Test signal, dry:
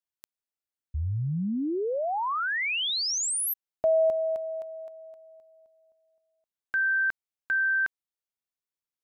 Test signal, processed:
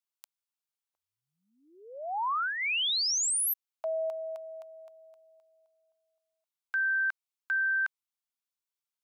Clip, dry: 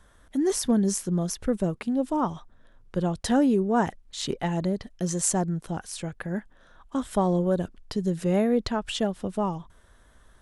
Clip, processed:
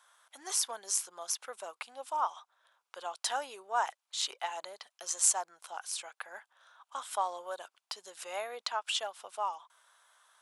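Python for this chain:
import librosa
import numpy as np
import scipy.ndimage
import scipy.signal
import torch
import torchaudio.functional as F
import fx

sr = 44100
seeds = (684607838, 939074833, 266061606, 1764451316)

y = scipy.signal.sosfilt(scipy.signal.butter(4, 830.0, 'highpass', fs=sr, output='sos'), x)
y = fx.peak_eq(y, sr, hz=1800.0, db=-7.0, octaves=0.34)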